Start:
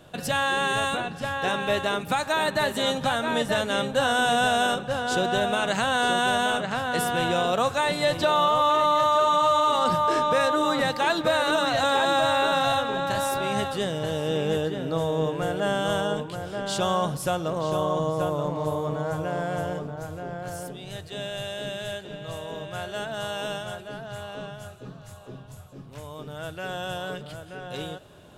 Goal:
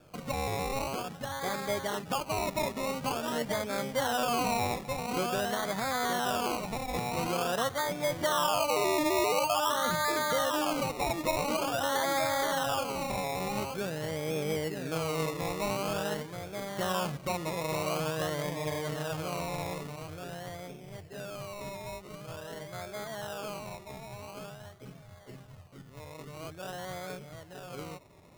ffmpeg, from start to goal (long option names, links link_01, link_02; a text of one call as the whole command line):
ffmpeg -i in.wav -af "lowpass=frequency=1600:width=0.5412,lowpass=frequency=1600:width=1.3066,acrusher=samples=22:mix=1:aa=0.000001:lfo=1:lforange=13.2:lforate=0.47,volume=-6.5dB" out.wav